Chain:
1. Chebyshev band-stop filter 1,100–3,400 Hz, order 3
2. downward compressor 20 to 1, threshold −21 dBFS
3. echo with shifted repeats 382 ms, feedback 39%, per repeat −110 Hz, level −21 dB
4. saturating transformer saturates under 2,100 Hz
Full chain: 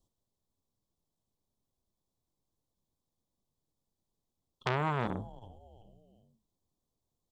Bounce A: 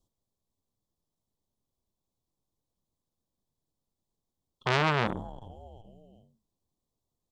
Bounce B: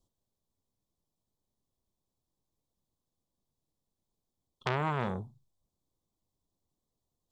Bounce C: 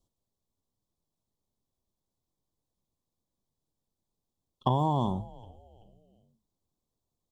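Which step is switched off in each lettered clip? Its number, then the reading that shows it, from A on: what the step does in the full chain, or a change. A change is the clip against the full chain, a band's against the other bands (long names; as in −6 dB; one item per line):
2, average gain reduction 5.5 dB
3, change in momentary loudness spread −6 LU
4, change in crest factor −5.0 dB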